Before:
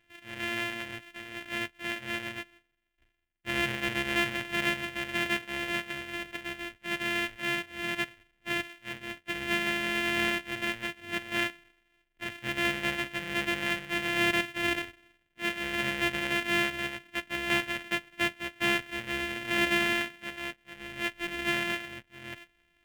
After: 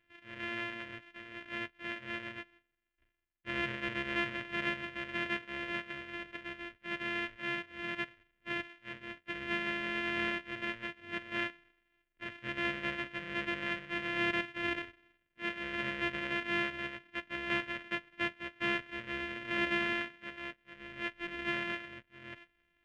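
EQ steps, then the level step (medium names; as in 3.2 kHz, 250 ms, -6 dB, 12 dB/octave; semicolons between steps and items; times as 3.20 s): Butterworth band-stop 790 Hz, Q 3.6; tape spacing loss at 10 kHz 26 dB; bass shelf 460 Hz -6.5 dB; 0.0 dB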